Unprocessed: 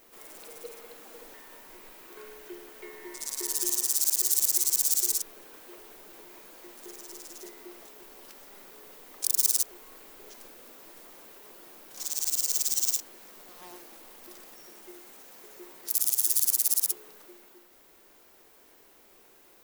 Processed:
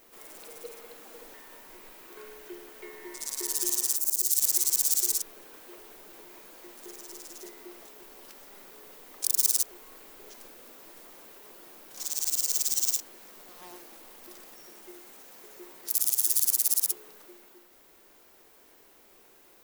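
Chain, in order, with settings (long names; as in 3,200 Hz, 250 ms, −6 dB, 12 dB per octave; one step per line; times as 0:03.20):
0:03.95–0:04.41: parametric band 5,500 Hz → 610 Hz −13.5 dB 2.1 octaves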